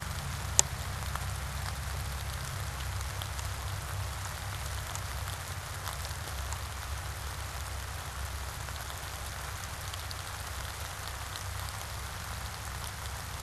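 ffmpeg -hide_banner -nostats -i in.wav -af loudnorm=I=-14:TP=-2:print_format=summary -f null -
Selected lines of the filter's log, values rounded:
Input Integrated:    -36.9 LUFS
Input True Peak:      -1.2 dBTP
Input LRA:             1.7 LU
Input Threshold:     -46.9 LUFS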